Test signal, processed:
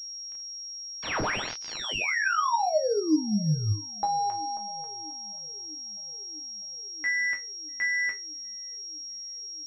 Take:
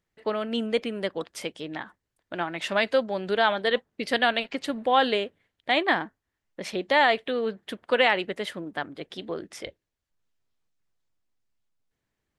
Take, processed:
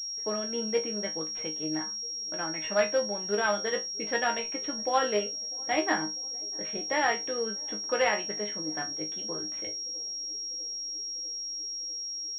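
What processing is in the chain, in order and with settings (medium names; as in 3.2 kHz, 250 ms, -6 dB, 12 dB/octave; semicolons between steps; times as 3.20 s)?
chord resonator G#2 fifth, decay 0.22 s; band-passed feedback delay 646 ms, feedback 83%, band-pass 340 Hz, level -23.5 dB; class-D stage that switches slowly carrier 5.6 kHz; trim +6.5 dB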